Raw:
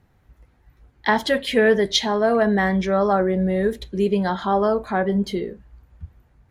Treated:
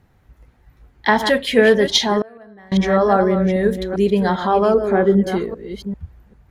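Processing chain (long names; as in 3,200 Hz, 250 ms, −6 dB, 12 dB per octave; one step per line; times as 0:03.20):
delay that plays each chunk backwards 396 ms, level −8.5 dB
0:02.20–0:02.72: gate with flip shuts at −13 dBFS, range −28 dB
0:04.74–0:05.32: graphic EQ with 15 bands 400 Hz +7 dB, 1,000 Hz −8 dB, 4,000 Hz −10 dB
level +3.5 dB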